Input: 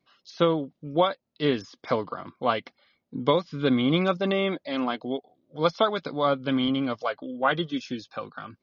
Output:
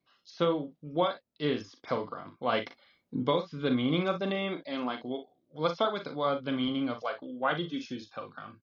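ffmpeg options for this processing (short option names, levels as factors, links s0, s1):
-filter_complex "[0:a]asplit=3[s0][s1][s2];[s0]afade=t=out:st=2.52:d=0.02[s3];[s1]acontrast=57,afade=t=in:st=2.52:d=0.02,afade=t=out:st=3.22:d=0.02[s4];[s2]afade=t=in:st=3.22:d=0.02[s5];[s3][s4][s5]amix=inputs=3:normalize=0,asplit=2[s6][s7];[s7]aecho=0:1:40|58:0.376|0.2[s8];[s6][s8]amix=inputs=2:normalize=0,volume=0.501"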